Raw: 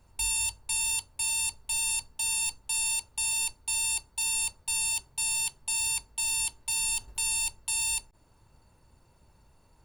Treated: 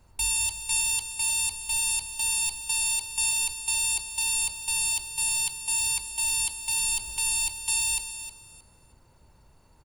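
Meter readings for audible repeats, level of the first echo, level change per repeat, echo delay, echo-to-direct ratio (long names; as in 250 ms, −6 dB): 2, −11.5 dB, −13.0 dB, 313 ms, −11.5 dB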